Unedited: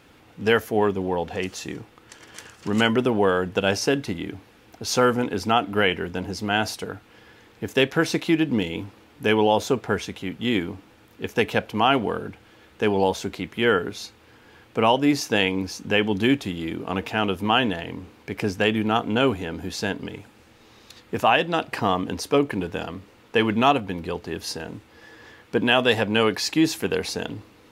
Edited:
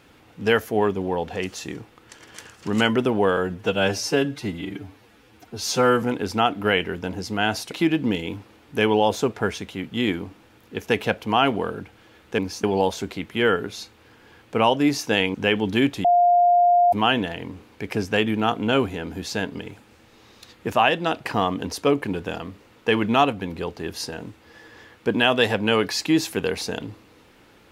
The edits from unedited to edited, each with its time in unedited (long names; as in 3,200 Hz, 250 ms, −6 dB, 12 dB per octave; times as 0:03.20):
0:03.37–0:05.14: time-stretch 1.5×
0:06.83–0:08.19: remove
0:15.57–0:15.82: move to 0:12.86
0:16.52–0:17.40: beep over 704 Hz −13 dBFS